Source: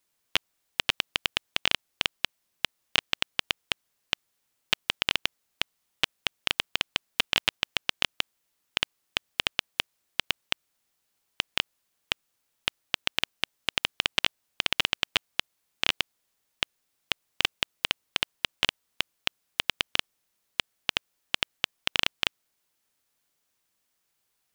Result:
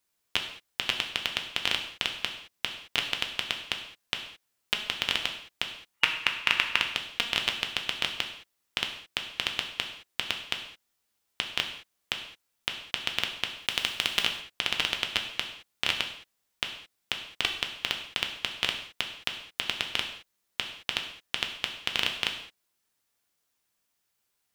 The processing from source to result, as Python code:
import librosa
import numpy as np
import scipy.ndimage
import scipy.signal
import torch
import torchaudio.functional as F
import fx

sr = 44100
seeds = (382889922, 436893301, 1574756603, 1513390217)

y = fx.spec_box(x, sr, start_s=5.94, length_s=0.87, low_hz=870.0, high_hz=2900.0, gain_db=8)
y = fx.high_shelf(y, sr, hz=6600.0, db=8.5, at=(13.57, 14.21))
y = fx.rev_gated(y, sr, seeds[0], gate_ms=240, shape='falling', drr_db=3.0)
y = y * librosa.db_to_amplitude(-3.0)